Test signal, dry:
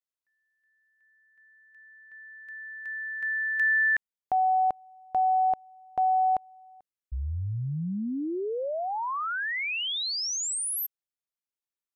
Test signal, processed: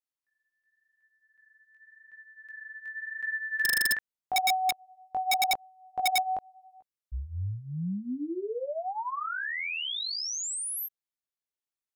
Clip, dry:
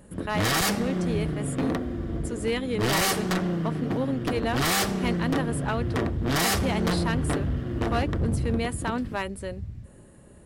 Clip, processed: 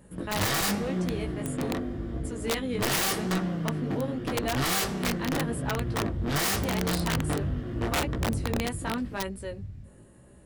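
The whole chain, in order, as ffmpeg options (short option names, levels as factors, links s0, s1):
-af "flanger=delay=15.5:depth=5.4:speed=0.87,aeval=exprs='(mod(10.6*val(0)+1,2)-1)/10.6':c=same"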